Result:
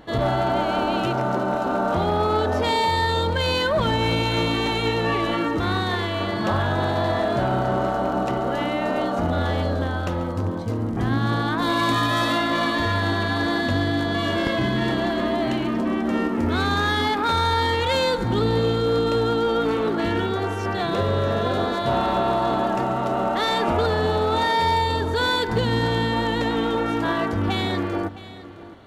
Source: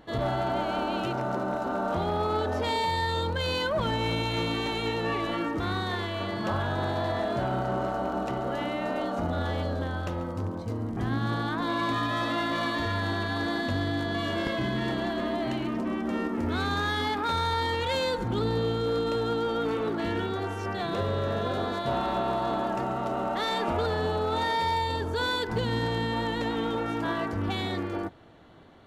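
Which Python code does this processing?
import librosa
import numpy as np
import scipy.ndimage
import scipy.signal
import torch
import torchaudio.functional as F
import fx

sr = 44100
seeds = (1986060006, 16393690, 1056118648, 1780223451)

p1 = fx.high_shelf(x, sr, hz=5300.0, db=10.0, at=(11.59, 12.38))
p2 = p1 + fx.echo_single(p1, sr, ms=663, db=-16.5, dry=0)
y = p2 * 10.0 ** (6.5 / 20.0)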